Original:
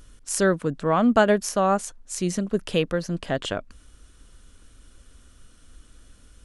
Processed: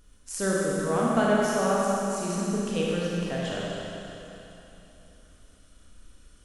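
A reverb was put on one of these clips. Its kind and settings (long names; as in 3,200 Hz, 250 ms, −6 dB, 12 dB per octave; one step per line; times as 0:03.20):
four-comb reverb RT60 3.2 s, combs from 31 ms, DRR −5.5 dB
level −9.5 dB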